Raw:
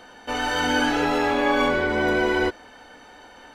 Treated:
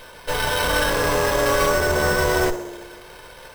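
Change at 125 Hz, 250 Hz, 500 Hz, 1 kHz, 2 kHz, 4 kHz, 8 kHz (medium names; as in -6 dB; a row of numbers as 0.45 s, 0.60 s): +8.5 dB, -4.0 dB, +3.0 dB, +1.0 dB, +1.5 dB, +2.5 dB, +11.0 dB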